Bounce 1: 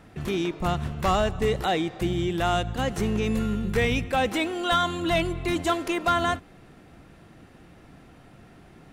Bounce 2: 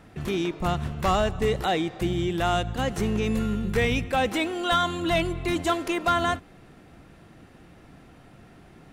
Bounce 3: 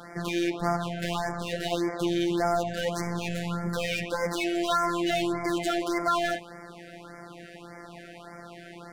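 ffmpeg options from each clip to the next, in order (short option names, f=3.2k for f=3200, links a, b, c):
-af anull
-filter_complex "[0:a]asplit=2[a][b];[b]highpass=f=720:p=1,volume=26dB,asoftclip=type=tanh:threshold=-15dB[c];[a][c]amix=inputs=2:normalize=0,lowpass=f=3.9k:p=1,volume=-6dB,afftfilt=real='hypot(re,im)*cos(PI*b)':imag='0':win_size=1024:overlap=0.75,afftfilt=real='re*(1-between(b*sr/1024,970*pow(3400/970,0.5+0.5*sin(2*PI*1.7*pts/sr))/1.41,970*pow(3400/970,0.5+0.5*sin(2*PI*1.7*pts/sr))*1.41))':imag='im*(1-between(b*sr/1024,970*pow(3400/970,0.5+0.5*sin(2*PI*1.7*pts/sr))/1.41,970*pow(3400/970,0.5+0.5*sin(2*PI*1.7*pts/sr))*1.41))':win_size=1024:overlap=0.75,volume=-3.5dB"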